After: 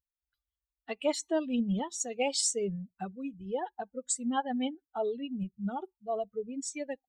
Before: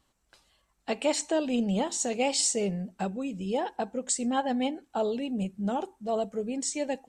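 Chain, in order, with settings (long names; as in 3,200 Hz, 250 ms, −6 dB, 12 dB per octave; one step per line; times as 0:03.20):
spectral dynamics exaggerated over time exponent 2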